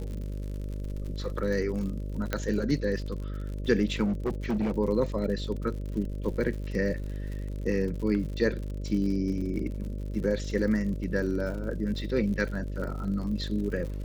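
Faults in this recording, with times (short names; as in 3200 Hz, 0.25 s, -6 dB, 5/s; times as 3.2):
buzz 50 Hz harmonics 12 -34 dBFS
crackle 68/s -36 dBFS
2.33 pop -14 dBFS
4.04–4.72 clipped -24 dBFS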